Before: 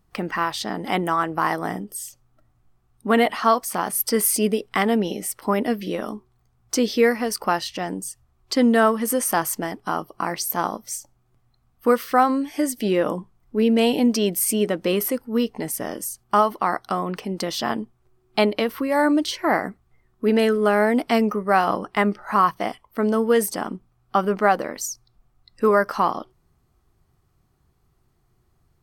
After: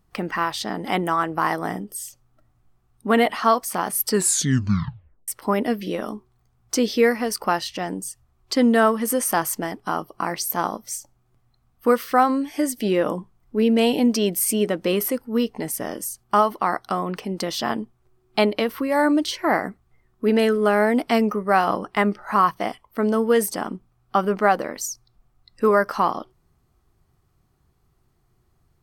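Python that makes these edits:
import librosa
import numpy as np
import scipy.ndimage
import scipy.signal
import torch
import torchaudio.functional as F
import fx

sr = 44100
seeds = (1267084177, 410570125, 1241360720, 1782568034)

y = fx.edit(x, sr, fx.tape_stop(start_s=4.06, length_s=1.22), tone=tone)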